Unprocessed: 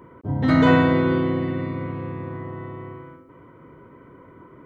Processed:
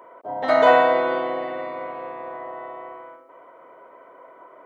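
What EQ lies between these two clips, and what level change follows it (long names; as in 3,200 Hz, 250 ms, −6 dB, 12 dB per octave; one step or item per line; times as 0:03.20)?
high-pass with resonance 660 Hz, resonance Q 4.9
0.0 dB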